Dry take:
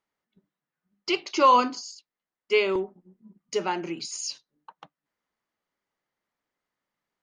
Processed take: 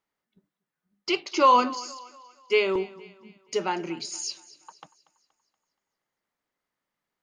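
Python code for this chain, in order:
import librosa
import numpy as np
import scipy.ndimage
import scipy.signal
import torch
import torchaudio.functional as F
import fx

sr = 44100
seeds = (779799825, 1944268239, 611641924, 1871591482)

y = fx.echo_thinned(x, sr, ms=237, feedback_pct=47, hz=310.0, wet_db=-19.0)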